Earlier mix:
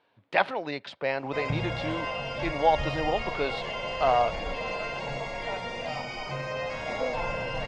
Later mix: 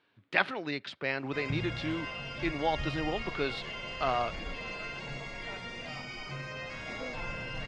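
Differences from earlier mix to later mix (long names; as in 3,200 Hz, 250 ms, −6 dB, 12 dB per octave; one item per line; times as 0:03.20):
background −4.0 dB
master: add flat-topped bell 690 Hz −8.5 dB 1.3 octaves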